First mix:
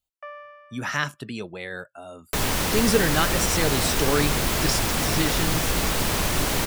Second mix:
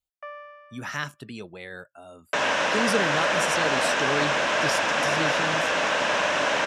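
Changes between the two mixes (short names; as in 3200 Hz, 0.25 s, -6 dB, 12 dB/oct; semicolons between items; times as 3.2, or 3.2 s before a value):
speech -5.0 dB; second sound: add speaker cabinet 330–5900 Hz, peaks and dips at 380 Hz -6 dB, 590 Hz +10 dB, 1000 Hz +5 dB, 1600 Hz +9 dB, 2700 Hz +5 dB, 4500 Hz -8 dB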